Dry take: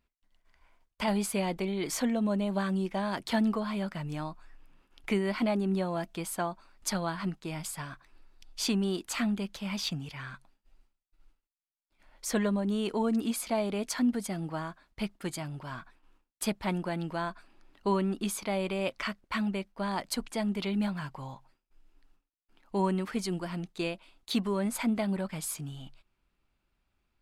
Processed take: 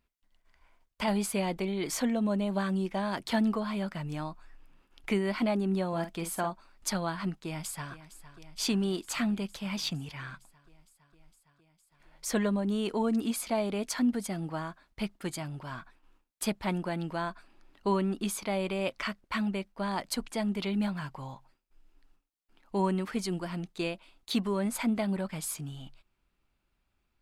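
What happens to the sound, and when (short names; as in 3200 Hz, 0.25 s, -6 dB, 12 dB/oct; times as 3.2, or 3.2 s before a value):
5.88–6.5 doubler 48 ms -8.5 dB
7.38–7.92 echo throw 0.46 s, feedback 80%, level -15 dB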